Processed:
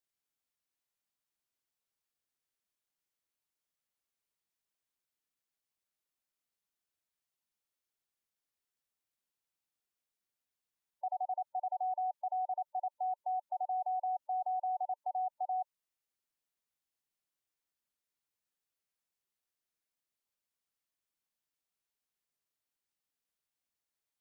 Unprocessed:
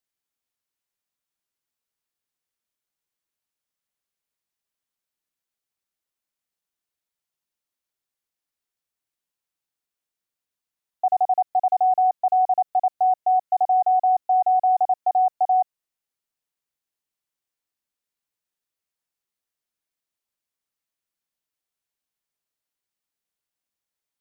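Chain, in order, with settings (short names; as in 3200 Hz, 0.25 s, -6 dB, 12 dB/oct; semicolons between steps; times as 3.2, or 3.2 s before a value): spectral gate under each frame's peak -25 dB strong; dynamic EQ 550 Hz, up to -4 dB, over -36 dBFS, Q 1.8; limiter -26.5 dBFS, peak gain reduction 10.5 dB; gain -4 dB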